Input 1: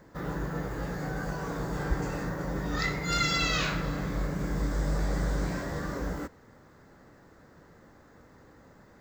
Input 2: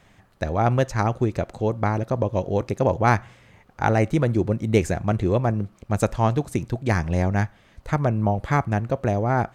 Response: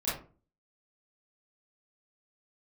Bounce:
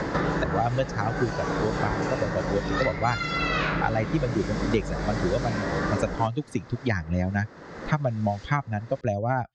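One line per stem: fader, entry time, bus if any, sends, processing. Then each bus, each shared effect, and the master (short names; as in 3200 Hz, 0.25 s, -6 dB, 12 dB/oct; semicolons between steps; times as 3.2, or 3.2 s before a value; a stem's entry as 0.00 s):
+3.0 dB, 0.00 s, no send, dry
+1.0 dB, 0.00 s, no send, per-bin expansion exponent 2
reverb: off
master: LPF 6000 Hz 24 dB/oct; low shelf 150 Hz -8 dB; three-band squash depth 100%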